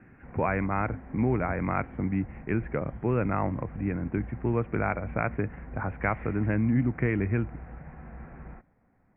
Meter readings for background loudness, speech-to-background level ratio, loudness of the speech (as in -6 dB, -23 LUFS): -44.0 LUFS, 14.5 dB, -29.5 LUFS